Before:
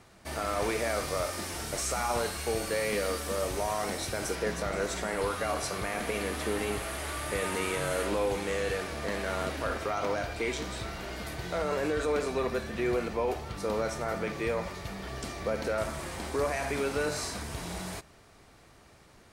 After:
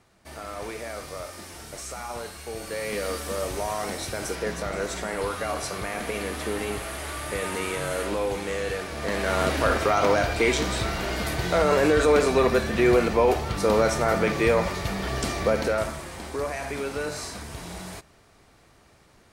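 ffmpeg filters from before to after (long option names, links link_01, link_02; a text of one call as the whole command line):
ffmpeg -i in.wav -af "volume=10dB,afade=type=in:start_time=2.5:duration=0.65:silence=0.446684,afade=type=in:start_time=8.9:duration=0.67:silence=0.398107,afade=type=out:start_time=15.36:duration=0.68:silence=0.316228" out.wav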